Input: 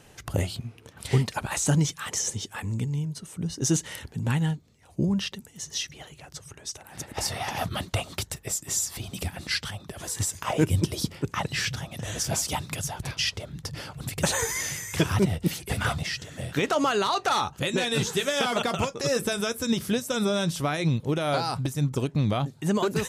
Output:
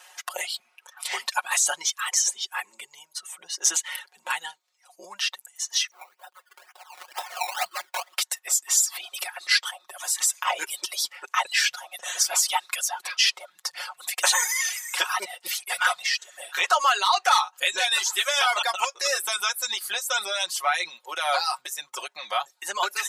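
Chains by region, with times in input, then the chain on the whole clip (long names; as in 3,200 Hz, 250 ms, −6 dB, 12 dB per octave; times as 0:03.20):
0:05.91–0:08.17: low-pass filter 1,500 Hz + sample-and-hold swept by an LFO 19× 2.1 Hz
whole clip: reverb reduction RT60 1.2 s; high-pass filter 790 Hz 24 dB per octave; comb filter 5.5 ms, depth 83%; level +5 dB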